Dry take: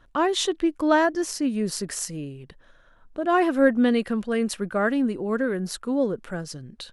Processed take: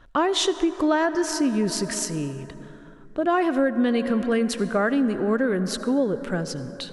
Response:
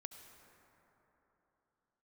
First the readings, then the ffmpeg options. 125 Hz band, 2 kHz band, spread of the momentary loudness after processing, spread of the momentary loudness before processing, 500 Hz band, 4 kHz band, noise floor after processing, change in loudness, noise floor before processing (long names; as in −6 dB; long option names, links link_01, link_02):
+4.0 dB, −0.5 dB, 10 LU, 14 LU, +0.5 dB, +3.0 dB, −45 dBFS, +0.5 dB, −55 dBFS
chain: -filter_complex "[0:a]asplit=2[link_01][link_02];[1:a]atrim=start_sample=2205,lowpass=9000[link_03];[link_02][link_03]afir=irnorm=-1:irlink=0,volume=3dB[link_04];[link_01][link_04]amix=inputs=2:normalize=0,acompressor=threshold=-18dB:ratio=5"